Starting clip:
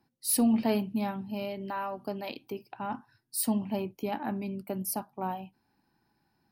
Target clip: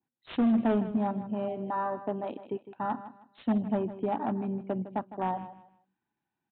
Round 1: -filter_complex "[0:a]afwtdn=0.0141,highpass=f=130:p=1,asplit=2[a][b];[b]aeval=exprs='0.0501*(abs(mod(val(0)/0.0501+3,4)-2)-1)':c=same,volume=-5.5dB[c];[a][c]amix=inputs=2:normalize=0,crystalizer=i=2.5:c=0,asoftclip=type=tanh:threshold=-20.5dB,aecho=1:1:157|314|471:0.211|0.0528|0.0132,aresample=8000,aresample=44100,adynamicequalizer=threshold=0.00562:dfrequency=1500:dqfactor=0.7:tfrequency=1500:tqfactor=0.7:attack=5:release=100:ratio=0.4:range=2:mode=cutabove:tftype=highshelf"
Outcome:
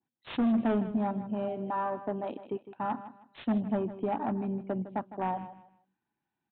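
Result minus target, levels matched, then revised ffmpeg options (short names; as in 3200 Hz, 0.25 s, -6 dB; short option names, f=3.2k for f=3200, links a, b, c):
soft clip: distortion +9 dB
-filter_complex "[0:a]afwtdn=0.0141,highpass=f=130:p=1,asplit=2[a][b];[b]aeval=exprs='0.0501*(abs(mod(val(0)/0.0501+3,4)-2)-1)':c=same,volume=-5.5dB[c];[a][c]amix=inputs=2:normalize=0,crystalizer=i=2.5:c=0,asoftclip=type=tanh:threshold=-10dB,aecho=1:1:157|314|471:0.211|0.0528|0.0132,aresample=8000,aresample=44100,adynamicequalizer=threshold=0.00562:dfrequency=1500:dqfactor=0.7:tfrequency=1500:tqfactor=0.7:attack=5:release=100:ratio=0.4:range=2:mode=cutabove:tftype=highshelf"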